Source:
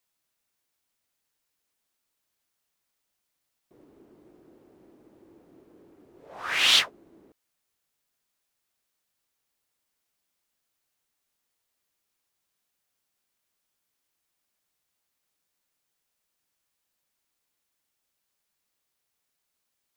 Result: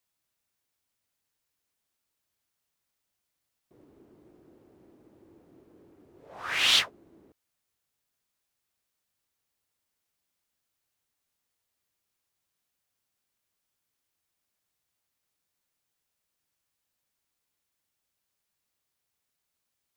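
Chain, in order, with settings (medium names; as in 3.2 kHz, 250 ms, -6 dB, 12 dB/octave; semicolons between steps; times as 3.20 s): peaking EQ 91 Hz +6 dB 1.4 oct; trim -2.5 dB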